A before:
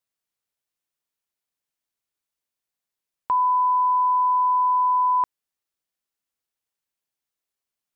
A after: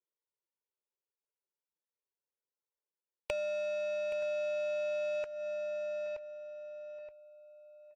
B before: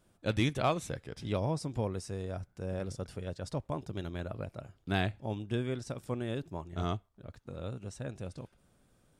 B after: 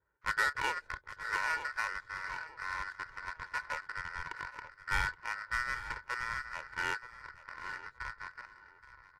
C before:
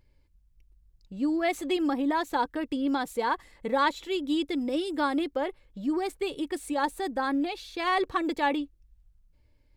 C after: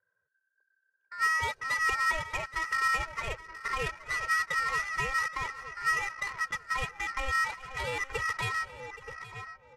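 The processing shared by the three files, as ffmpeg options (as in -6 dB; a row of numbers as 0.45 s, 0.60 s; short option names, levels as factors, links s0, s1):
-filter_complex "[0:a]asplit=2[s0][s1];[s1]adelay=924,lowpass=f=1200:p=1,volume=0.251,asplit=2[s2][s3];[s3]adelay=924,lowpass=f=1200:p=1,volume=0.44,asplit=2[s4][s5];[s5]adelay=924,lowpass=f=1200:p=1,volume=0.44,asplit=2[s6][s7];[s7]adelay=924,lowpass=f=1200:p=1,volume=0.44[s8];[s2][s4][s6][s8]amix=inputs=4:normalize=0[s9];[s0][s9]amix=inputs=2:normalize=0,acrossover=split=320|3000[s10][s11][s12];[s11]acompressor=threshold=0.0316:ratio=6[s13];[s10][s13][s12]amix=inputs=3:normalize=0,aeval=exprs='val(0)*sin(2*PI*1600*n/s)':c=same,adynamicequalizer=threshold=0.00708:dfrequency=2800:dqfactor=5:tfrequency=2800:tqfactor=5:attack=5:release=100:ratio=0.375:range=1.5:mode=cutabove:tftype=bell,aecho=1:1:2.1:0.7,adynamicsmooth=sensitivity=5:basefreq=750,asplit=2[s14][s15];[s15]aecho=0:1:823:0.15[s16];[s14][s16]amix=inputs=2:normalize=0,asubboost=boost=2:cutoff=190" -ar 32000 -c:a libvorbis -b:a 64k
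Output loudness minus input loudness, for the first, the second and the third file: -16.5 LU, -0.5 LU, -1.5 LU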